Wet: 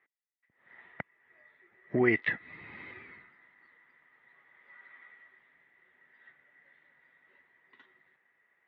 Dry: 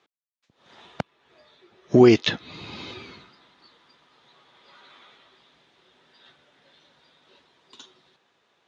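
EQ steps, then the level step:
transistor ladder low-pass 2,000 Hz, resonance 90%
0.0 dB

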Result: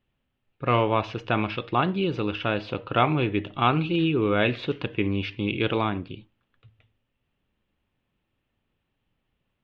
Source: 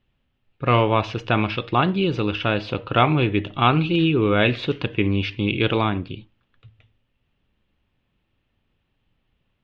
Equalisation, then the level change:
low-shelf EQ 130 Hz −5.5 dB
high-shelf EQ 3,700 Hz −6 dB
−3.0 dB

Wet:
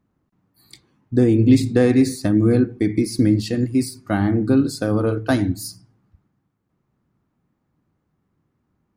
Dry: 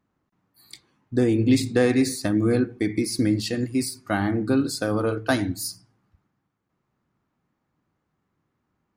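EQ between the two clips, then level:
low-shelf EQ 470 Hz +9 dB
−1.5 dB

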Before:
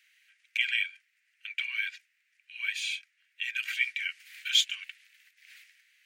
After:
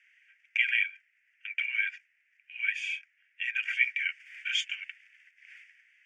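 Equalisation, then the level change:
high-frequency loss of the air 140 metres
phaser with its sweep stopped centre 1,100 Hz, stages 6
+5.5 dB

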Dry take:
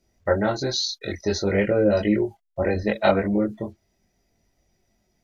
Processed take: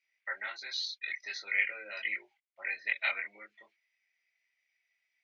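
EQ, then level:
four-pole ladder band-pass 2,400 Hz, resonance 70%
high-frequency loss of the air 64 metres
+6.5 dB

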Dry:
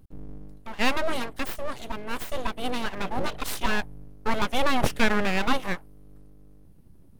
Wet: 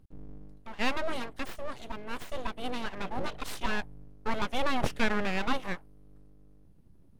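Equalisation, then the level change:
high-shelf EQ 11,000 Hz −11 dB
−5.5 dB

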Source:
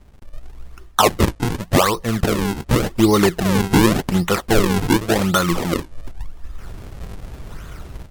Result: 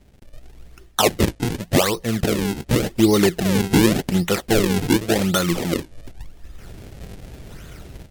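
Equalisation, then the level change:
low-shelf EQ 68 Hz −9 dB
parametric band 1,100 Hz −9 dB 0.85 octaves
0.0 dB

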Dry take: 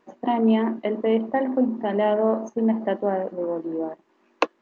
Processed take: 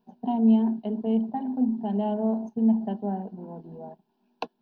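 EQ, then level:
parametric band 2,800 Hz −13 dB 2.1 octaves
phaser with its sweep stopped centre 320 Hz, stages 6
phaser with its sweep stopped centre 2,000 Hz, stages 6
+4.5 dB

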